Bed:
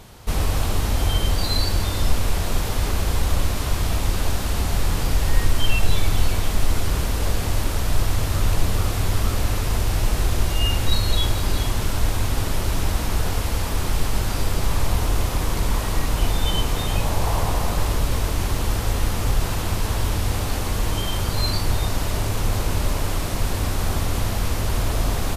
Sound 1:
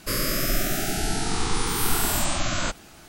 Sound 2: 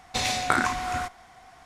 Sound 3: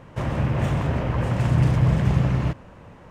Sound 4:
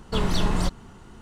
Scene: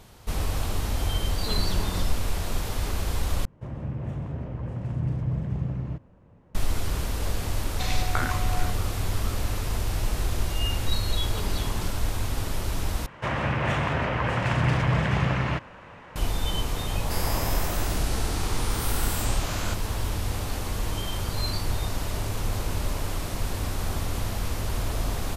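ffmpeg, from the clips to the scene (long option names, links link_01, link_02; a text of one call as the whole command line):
ffmpeg -i bed.wav -i cue0.wav -i cue1.wav -i cue2.wav -i cue3.wav -filter_complex "[4:a]asplit=2[link_01][link_02];[3:a]asplit=2[link_03][link_04];[0:a]volume=-6dB[link_05];[link_03]tiltshelf=frequency=740:gain=6[link_06];[2:a]lowpass=6900[link_07];[link_02]highpass=200[link_08];[link_04]equalizer=frequency=2000:width=0.33:gain=13[link_09];[link_05]asplit=3[link_10][link_11][link_12];[link_10]atrim=end=3.454[link_13];[link_06]atrim=end=3.1,asetpts=PTS-STARTPTS,volume=-14.5dB[link_14];[link_11]atrim=start=6.546:end=13.064[link_15];[link_09]atrim=end=3.1,asetpts=PTS-STARTPTS,volume=-6dB[link_16];[link_12]atrim=start=16.156[link_17];[link_01]atrim=end=1.21,asetpts=PTS-STARTPTS,volume=-8.5dB,afade=type=in:duration=0.004:curve=hsin,afade=type=out:start_time=1.206:duration=0.004:curve=hsin,adelay=1340[link_18];[link_07]atrim=end=1.65,asetpts=PTS-STARTPTS,volume=-6dB,afade=type=in:duration=0.004:curve=hsin,afade=type=out:start_time=1.646:duration=0.004:curve=hsin,adelay=7650[link_19];[link_08]atrim=end=1.21,asetpts=PTS-STARTPTS,volume=-10.5dB,afade=type=in:duration=0.004:curve=hsin,afade=type=out:start_time=1.206:duration=0.004:curve=hsin,adelay=11210[link_20];[1:a]atrim=end=3.08,asetpts=PTS-STARTPTS,volume=-7dB,afade=type=in:duration=0.004:curve=hsin,afade=type=out:start_time=3.076:duration=0.004:curve=hsin,adelay=17030[link_21];[link_13][link_14]acrossfade=duration=0.004:curve1=hsin:curve2=hsin[link_22];[link_22][link_15]acrossfade=duration=0.004:curve1=hsin:curve2=hsin[link_23];[link_23][link_16]acrossfade=duration=0.004:curve1=hsin:curve2=hsin[link_24];[link_24][link_17]acrossfade=duration=0.004:curve1=hsin:curve2=hsin[link_25];[link_25][link_18][link_19][link_20][link_21]amix=inputs=5:normalize=0" out.wav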